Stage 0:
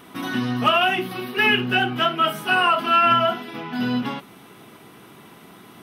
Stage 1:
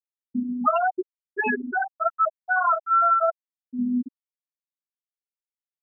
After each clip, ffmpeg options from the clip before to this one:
ffmpeg -i in.wav -af "lowpass=1800,afftfilt=real='re*gte(hypot(re,im),0.501)':imag='im*gte(hypot(re,im),0.501)':win_size=1024:overlap=0.75" out.wav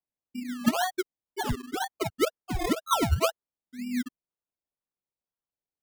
ffmpeg -i in.wav -af "aphaser=in_gain=1:out_gain=1:delay=3.6:decay=0.54:speed=0.99:type=triangular,acrusher=samples=24:mix=1:aa=0.000001:lfo=1:lforange=14.4:lforate=2,volume=-7.5dB" out.wav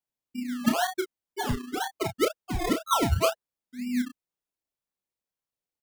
ffmpeg -i in.wav -filter_complex "[0:a]asplit=2[link_01][link_02];[link_02]adelay=32,volume=-6.5dB[link_03];[link_01][link_03]amix=inputs=2:normalize=0" out.wav

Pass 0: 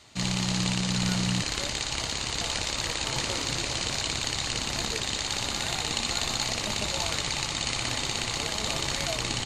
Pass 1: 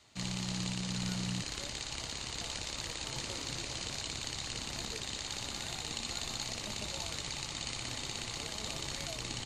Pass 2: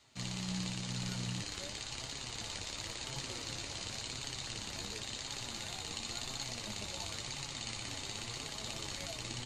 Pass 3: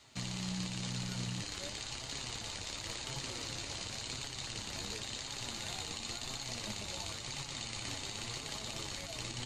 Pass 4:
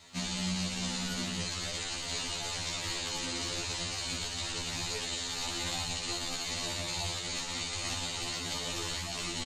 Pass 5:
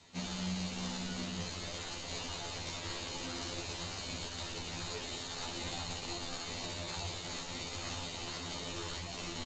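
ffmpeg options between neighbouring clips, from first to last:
ffmpeg -i in.wav -filter_complex "[0:a]acrossover=split=470|3000[link_01][link_02][link_03];[link_02]acompressor=threshold=-35dB:ratio=6[link_04];[link_01][link_04][link_03]amix=inputs=3:normalize=0,volume=-9dB" out.wav
ffmpeg -i in.wav -af "flanger=delay=7:depth=3.9:regen=46:speed=0.94:shape=triangular,volume=1.5dB" out.wav
ffmpeg -i in.wav -af "alimiter=level_in=9dB:limit=-24dB:level=0:latency=1:release=204,volume=-9dB,volume=5dB" out.wav
ffmpeg -i in.wav -af "aecho=1:1:78:0.376,afftfilt=real='re*2*eq(mod(b,4),0)':imag='im*2*eq(mod(b,4),0)':win_size=2048:overlap=0.75,volume=8dB" out.wav
ffmpeg -i in.wav -filter_complex "[0:a]asplit=2[link_01][link_02];[link_02]acrusher=samples=20:mix=1:aa=0.000001:lfo=1:lforange=12:lforate=2,volume=-6.5dB[link_03];[link_01][link_03]amix=inputs=2:normalize=0,volume=-6.5dB" -ar 16000 -c:a g722 out.g722

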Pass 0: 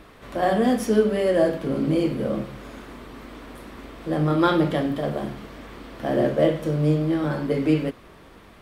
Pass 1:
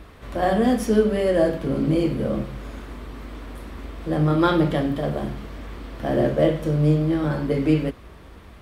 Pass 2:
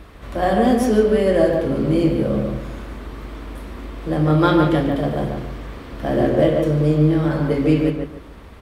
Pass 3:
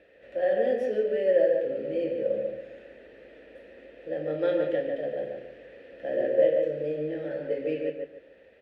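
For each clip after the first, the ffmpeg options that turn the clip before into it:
ffmpeg -i in.wav -af "equalizer=frequency=61:width=0.9:gain=12" out.wav
ffmpeg -i in.wav -filter_complex "[0:a]asplit=2[link_01][link_02];[link_02]adelay=144,lowpass=frequency=2000:poles=1,volume=-3dB,asplit=2[link_03][link_04];[link_04]adelay=144,lowpass=frequency=2000:poles=1,volume=0.28,asplit=2[link_05][link_06];[link_06]adelay=144,lowpass=frequency=2000:poles=1,volume=0.28,asplit=2[link_07][link_08];[link_08]adelay=144,lowpass=frequency=2000:poles=1,volume=0.28[link_09];[link_01][link_03][link_05][link_07][link_09]amix=inputs=5:normalize=0,volume=2dB" out.wav
ffmpeg -i in.wav -filter_complex "[0:a]asplit=3[link_01][link_02][link_03];[link_01]bandpass=frequency=530:width_type=q:width=8,volume=0dB[link_04];[link_02]bandpass=frequency=1840:width_type=q:width=8,volume=-6dB[link_05];[link_03]bandpass=frequency=2480:width_type=q:width=8,volume=-9dB[link_06];[link_04][link_05][link_06]amix=inputs=3:normalize=0" out.wav

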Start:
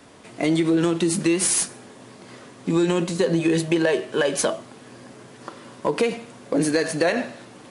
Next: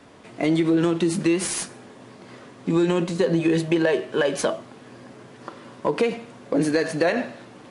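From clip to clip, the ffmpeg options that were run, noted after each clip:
ffmpeg -i in.wav -af "lowpass=frequency=3800:poles=1" out.wav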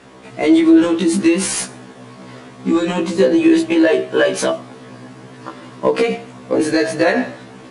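ffmpeg -i in.wav -af "afftfilt=real='re*1.73*eq(mod(b,3),0)':imag='im*1.73*eq(mod(b,3),0)':win_size=2048:overlap=0.75,volume=9dB" out.wav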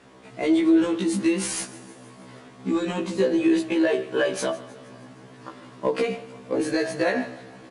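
ffmpeg -i in.wav -af "aecho=1:1:157|314|471|628|785:0.106|0.0625|0.0369|0.0218|0.0128,volume=-8.5dB" out.wav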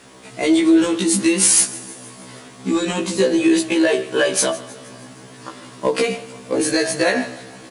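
ffmpeg -i in.wav -af "crystalizer=i=3:c=0,volume=4.5dB" out.wav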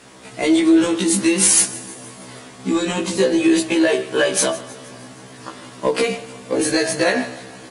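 ffmpeg -i in.wav -ar 48000 -c:a aac -b:a 48k out.aac

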